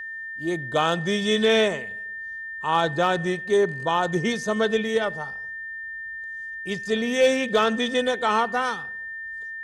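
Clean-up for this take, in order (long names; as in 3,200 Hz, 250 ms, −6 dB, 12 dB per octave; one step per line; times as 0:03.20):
clipped peaks rebuilt −11.5 dBFS
notch filter 1,800 Hz, Q 30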